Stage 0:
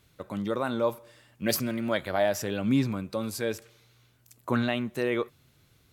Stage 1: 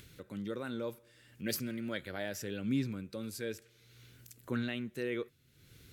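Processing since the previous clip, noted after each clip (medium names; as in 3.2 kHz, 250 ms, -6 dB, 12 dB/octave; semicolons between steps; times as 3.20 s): upward compressor, threshold -35 dBFS; high-order bell 850 Hz -10 dB 1.2 oct; trim -8 dB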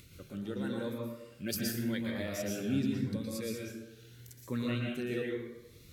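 plate-style reverb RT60 0.95 s, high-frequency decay 0.55×, pre-delay 105 ms, DRR -1.5 dB; Shepard-style phaser rising 0.85 Hz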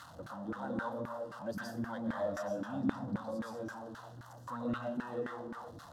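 jump at every zero crossing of -38.5 dBFS; static phaser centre 960 Hz, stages 4; LFO band-pass saw down 3.8 Hz 290–1600 Hz; trim +11 dB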